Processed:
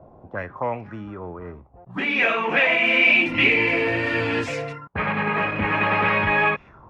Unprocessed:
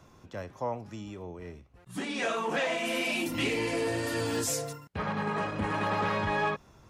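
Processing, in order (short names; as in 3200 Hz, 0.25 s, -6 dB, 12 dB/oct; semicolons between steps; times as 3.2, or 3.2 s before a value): envelope low-pass 610–2400 Hz up, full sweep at -32.5 dBFS; gain +6 dB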